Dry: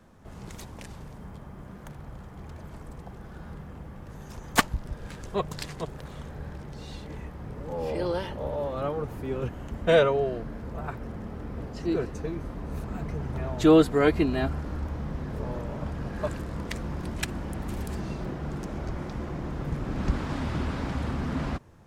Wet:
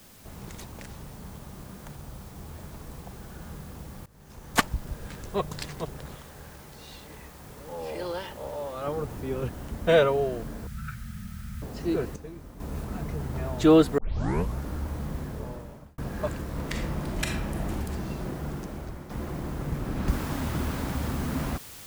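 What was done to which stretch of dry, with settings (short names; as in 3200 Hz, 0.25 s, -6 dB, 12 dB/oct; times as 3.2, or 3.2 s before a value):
0.64–1.18 Doppler distortion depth 0.31 ms
1.97–2.54 median filter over 15 samples
4.06–4.67 fade in, from -20.5 dB
6.16–8.87 low shelf 460 Hz -9.5 dB
10.67–11.62 brick-wall FIR band-stop 230–1200 Hz
12.16–12.6 gain -9 dB
13.98 tape start 0.66 s
15.17–15.98 fade out
16.5–17.7 reverb throw, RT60 0.87 s, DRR 0.5 dB
18.46–19.1 fade out, to -9 dB
20.08 noise floor step -54 dB -45 dB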